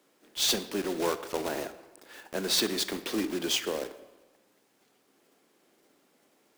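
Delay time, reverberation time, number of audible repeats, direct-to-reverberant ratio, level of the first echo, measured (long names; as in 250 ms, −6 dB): no echo audible, 1.2 s, no echo audible, 12.0 dB, no echo audible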